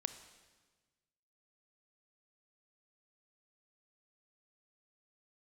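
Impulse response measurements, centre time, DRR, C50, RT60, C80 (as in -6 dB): 12 ms, 10.5 dB, 11.0 dB, 1.4 s, 13.0 dB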